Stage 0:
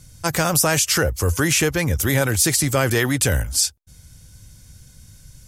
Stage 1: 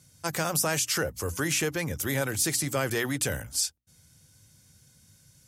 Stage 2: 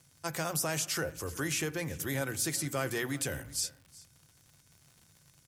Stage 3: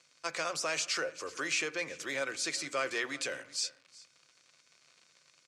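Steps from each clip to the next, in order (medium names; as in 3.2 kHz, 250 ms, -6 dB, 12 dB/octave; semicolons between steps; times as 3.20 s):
high-pass 120 Hz 12 dB/octave; hum notches 60/120/180/240/300 Hz; trim -8.5 dB
crackle 130 per s -41 dBFS; delay 374 ms -21 dB; on a send at -12 dB: reverberation RT60 0.75 s, pre-delay 3 ms; on the sum: trim -6 dB
cabinet simulation 430–7300 Hz, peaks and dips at 540 Hz +3 dB, 810 Hz -6 dB, 1.2 kHz +4 dB, 2.4 kHz +7 dB, 4.3 kHz +5 dB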